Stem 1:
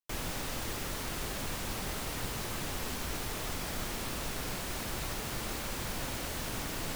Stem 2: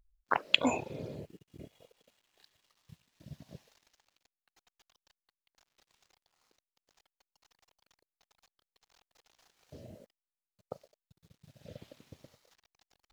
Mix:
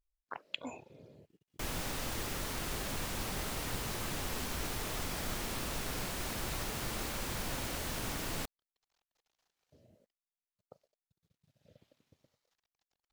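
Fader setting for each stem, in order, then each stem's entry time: −1.0, −14.5 decibels; 1.50, 0.00 seconds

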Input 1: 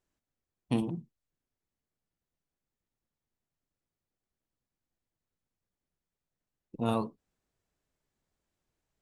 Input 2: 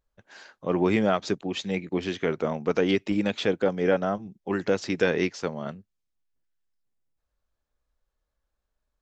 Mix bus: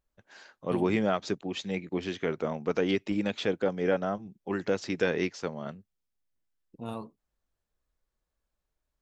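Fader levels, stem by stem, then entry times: −8.0, −4.0 decibels; 0.00, 0.00 seconds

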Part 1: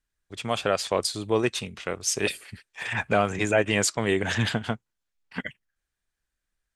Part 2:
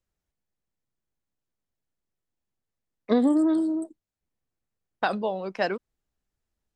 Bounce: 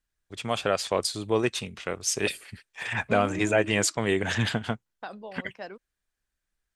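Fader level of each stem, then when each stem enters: −1.0, −13.5 decibels; 0.00, 0.00 seconds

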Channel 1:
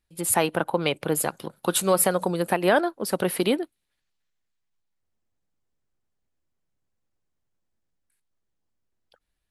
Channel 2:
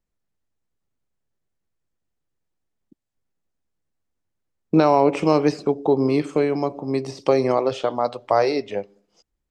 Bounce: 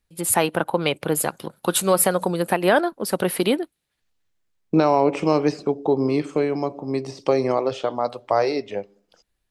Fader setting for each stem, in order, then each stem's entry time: +2.5, −1.5 decibels; 0.00, 0.00 seconds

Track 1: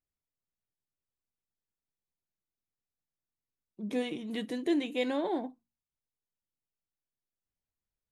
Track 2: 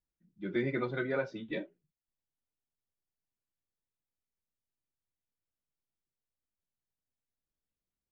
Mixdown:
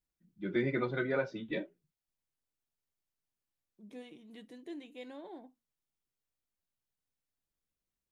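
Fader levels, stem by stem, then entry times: −16.0, +0.5 decibels; 0.00, 0.00 seconds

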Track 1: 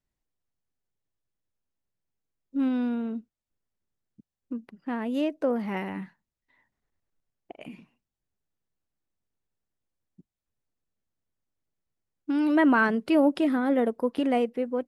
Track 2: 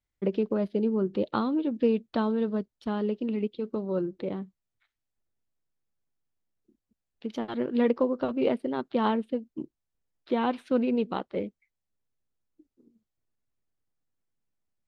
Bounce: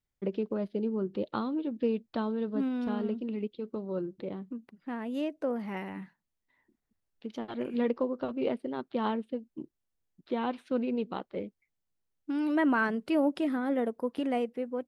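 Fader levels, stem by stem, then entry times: −5.5, −5.0 decibels; 0.00, 0.00 seconds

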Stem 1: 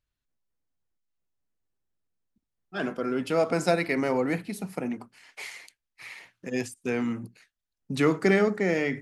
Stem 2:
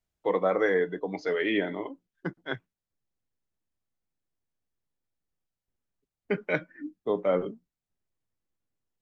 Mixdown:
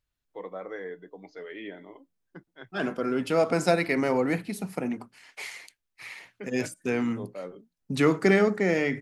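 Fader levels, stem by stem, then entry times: +1.0, −13.0 decibels; 0.00, 0.10 seconds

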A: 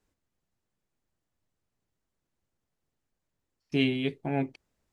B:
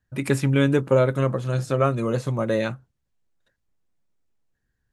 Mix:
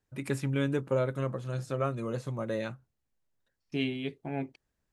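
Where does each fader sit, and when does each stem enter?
−5.5, −10.0 decibels; 0.00, 0.00 seconds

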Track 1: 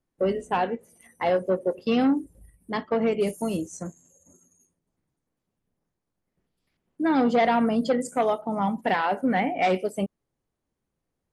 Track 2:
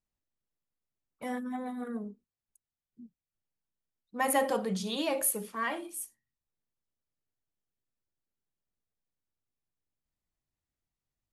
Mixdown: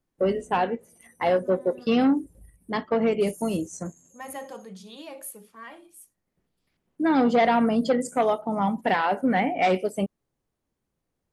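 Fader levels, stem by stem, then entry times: +1.0, −10.0 decibels; 0.00, 0.00 seconds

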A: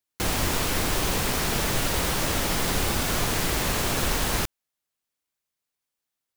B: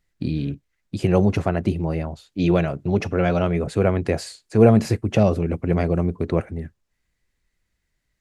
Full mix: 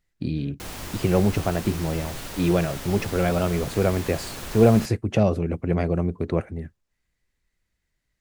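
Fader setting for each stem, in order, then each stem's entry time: −10.5, −2.5 decibels; 0.40, 0.00 seconds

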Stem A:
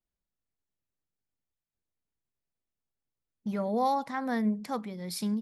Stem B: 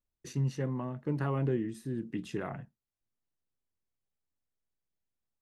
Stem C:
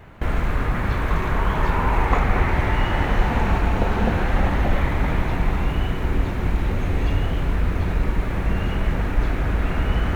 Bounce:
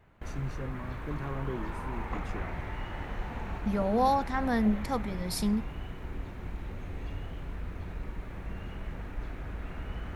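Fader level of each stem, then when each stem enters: +2.0, −6.0, −17.0 decibels; 0.20, 0.00, 0.00 seconds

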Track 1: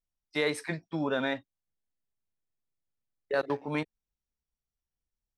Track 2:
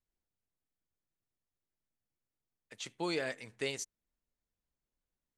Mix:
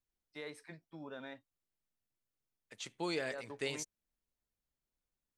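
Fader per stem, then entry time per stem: −17.5, −2.0 decibels; 0.00, 0.00 seconds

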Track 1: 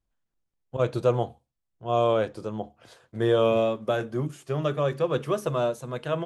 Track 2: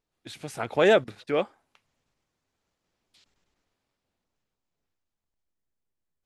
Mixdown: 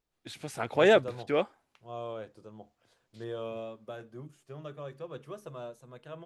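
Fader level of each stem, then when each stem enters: −16.5, −2.0 decibels; 0.00, 0.00 seconds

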